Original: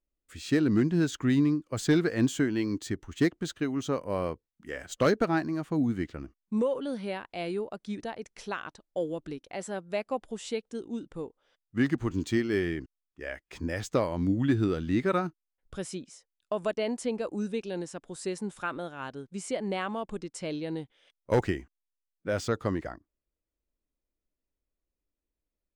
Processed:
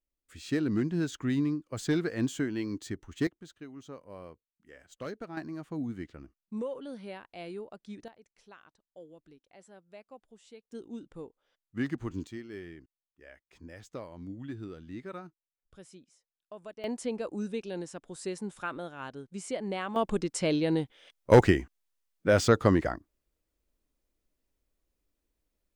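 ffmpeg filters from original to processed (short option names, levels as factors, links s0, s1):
-af "asetnsamples=n=441:p=0,asendcmd='3.27 volume volume -15.5dB;5.37 volume volume -8dB;8.08 volume volume -18.5dB;10.72 volume volume -6dB;12.27 volume volume -15dB;16.84 volume volume -2.5dB;19.96 volume volume 7dB',volume=0.596"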